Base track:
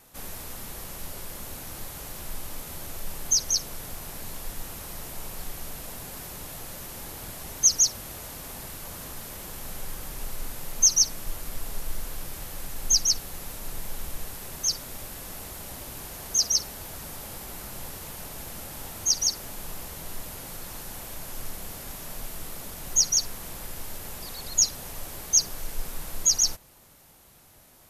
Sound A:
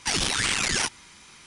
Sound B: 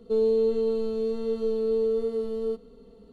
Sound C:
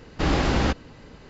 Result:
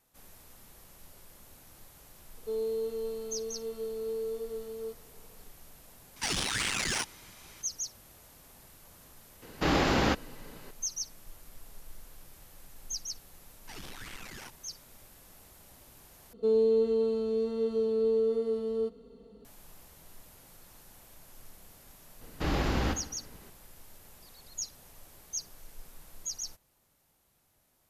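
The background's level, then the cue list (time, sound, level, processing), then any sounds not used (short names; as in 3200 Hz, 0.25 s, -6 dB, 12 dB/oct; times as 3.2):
base track -16 dB
2.37 add B -8.5 dB + tone controls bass -11 dB, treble +5 dB
6.16 add A -5 dB + soft clip -17 dBFS
9.42 add C -1.5 dB + low shelf 110 Hz -11.5 dB
13.62 add A -17 dB + high shelf 2600 Hz -9.5 dB
16.33 replace with B -2 dB + HPF 42 Hz
22.21 add C -8 dB + feedback echo 67 ms, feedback 53%, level -11.5 dB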